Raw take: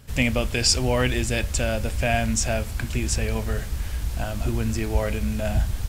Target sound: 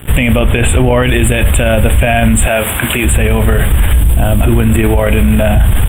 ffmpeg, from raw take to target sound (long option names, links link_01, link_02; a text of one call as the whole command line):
ffmpeg -i in.wav -filter_complex "[0:a]aeval=exprs='sgn(val(0))*max(abs(val(0))-0.00355,0)':channel_layout=same,asuperstop=centerf=5400:order=12:qfactor=1.2,asettb=1/sr,asplit=3[link_01][link_02][link_03];[link_01]atrim=end=0.394[link_04];[link_02]atrim=start=0.39:end=1.03,asetpts=PTS-STARTPTS,afade=type=in:duration=0.004:curve=qsin,afade=type=out:start_time=0.636:duration=0.004:curve=qsin,highshelf=frequency=3900:gain=-8.5[link_05];[link_03]atrim=start=1.026[link_06];[link_04][link_05]acrossfade=duration=0.004:curve1=hsin:curve2=qsin[link_07];[link_07][link_06]acrossfade=duration=0.004:curve1=qsin:curve2=hsin,asplit=3[link_08][link_09][link_10];[link_08]afade=type=out:start_time=2.46:duration=0.02[link_11];[link_09]highpass=frequency=540:poles=1,afade=type=in:start_time=2.46:duration=0.02,afade=type=out:start_time=3.04:duration=0.02[link_12];[link_10]afade=type=in:start_time=3.04:duration=0.02[link_13];[link_11][link_12][link_13]amix=inputs=3:normalize=0,asettb=1/sr,asplit=3[link_14][link_15][link_16];[link_14]atrim=end=3.934[link_17];[link_15]atrim=start=3.93:end=4.41,asetpts=PTS-STARTPTS,afade=type=in:duration=0.004:curve=qsin,afade=type=out:start_time=0.476:duration=0.004:curve=qsin,equalizer=frequency=1600:width=0.51:gain=-8.5[link_18];[link_16]atrim=start=4.406[link_19];[link_17][link_18]acrossfade=duration=0.004:curve1=hsin:curve2=qsin[link_20];[link_20][link_19]acrossfade=duration=0.004:curve1=qsin:curve2=hsin,alimiter=level_in=28dB:limit=-1dB:release=50:level=0:latency=1,volume=-1dB" out.wav